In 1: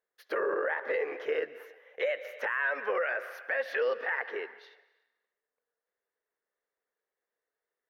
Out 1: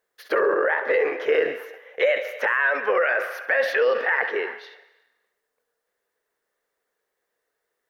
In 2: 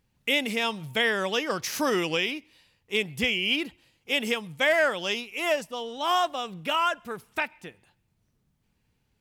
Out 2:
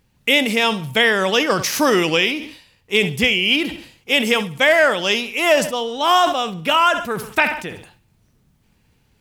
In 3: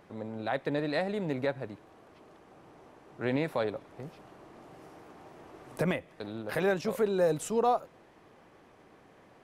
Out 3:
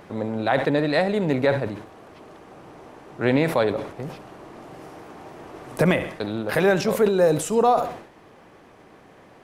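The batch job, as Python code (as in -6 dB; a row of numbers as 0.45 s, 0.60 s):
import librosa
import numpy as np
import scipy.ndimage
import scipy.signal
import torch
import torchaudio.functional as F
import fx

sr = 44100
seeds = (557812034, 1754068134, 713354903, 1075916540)

p1 = fx.rider(x, sr, range_db=4, speed_s=0.5)
p2 = x + (p1 * librosa.db_to_amplitude(0.0))
p3 = fx.echo_feedback(p2, sr, ms=67, feedback_pct=41, wet_db=-17.5)
p4 = fx.sustainer(p3, sr, db_per_s=97.0)
y = p4 * librosa.db_to_amplitude(3.5)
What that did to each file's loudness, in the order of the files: +9.5 LU, +9.5 LU, +9.5 LU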